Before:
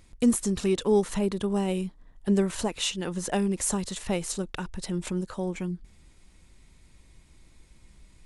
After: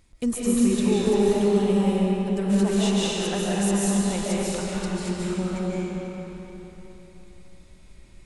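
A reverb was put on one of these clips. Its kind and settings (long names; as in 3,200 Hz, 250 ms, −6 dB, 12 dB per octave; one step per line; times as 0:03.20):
comb and all-pass reverb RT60 3.7 s, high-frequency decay 0.8×, pre-delay 105 ms, DRR −7.5 dB
level −4 dB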